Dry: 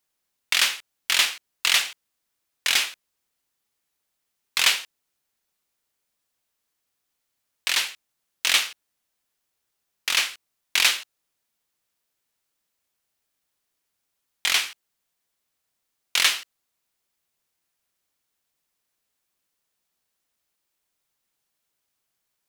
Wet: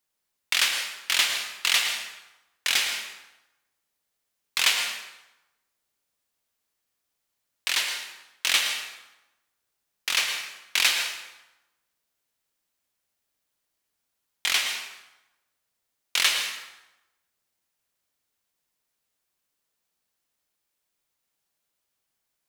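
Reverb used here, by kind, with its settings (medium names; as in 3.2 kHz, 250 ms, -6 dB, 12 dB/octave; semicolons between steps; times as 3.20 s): plate-style reverb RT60 0.99 s, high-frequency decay 0.75×, pre-delay 95 ms, DRR 4.5 dB; trim -2.5 dB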